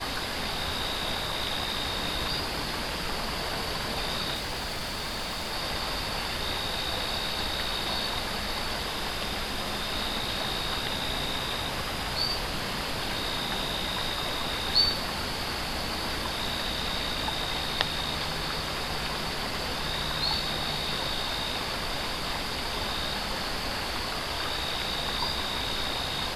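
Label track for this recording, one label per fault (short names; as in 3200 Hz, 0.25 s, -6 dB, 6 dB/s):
4.340000	5.540000	clipped -29.5 dBFS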